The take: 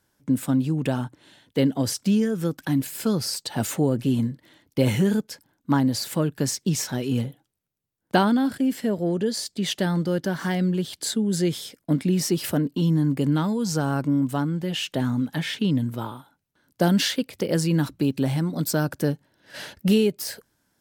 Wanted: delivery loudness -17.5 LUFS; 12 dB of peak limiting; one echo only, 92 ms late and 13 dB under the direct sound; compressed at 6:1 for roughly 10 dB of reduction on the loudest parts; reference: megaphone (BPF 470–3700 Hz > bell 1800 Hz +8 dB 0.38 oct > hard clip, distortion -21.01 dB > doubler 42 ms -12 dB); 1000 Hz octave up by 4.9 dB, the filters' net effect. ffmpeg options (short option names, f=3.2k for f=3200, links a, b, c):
-filter_complex "[0:a]equalizer=f=1k:t=o:g=6.5,acompressor=threshold=-23dB:ratio=6,alimiter=limit=-22.5dB:level=0:latency=1,highpass=470,lowpass=3.7k,equalizer=f=1.8k:t=o:w=0.38:g=8,aecho=1:1:92:0.224,asoftclip=type=hard:threshold=-26.5dB,asplit=2[a][b];[b]adelay=42,volume=-12dB[c];[a][c]amix=inputs=2:normalize=0,volume=20dB"